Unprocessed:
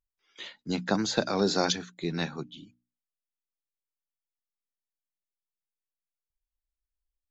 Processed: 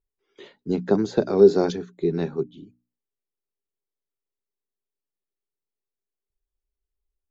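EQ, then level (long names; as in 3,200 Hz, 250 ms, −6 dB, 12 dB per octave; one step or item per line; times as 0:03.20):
tilt shelving filter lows +8 dB, about 1,100 Hz
parametric band 400 Hz +14 dB 0.32 octaves
−3.0 dB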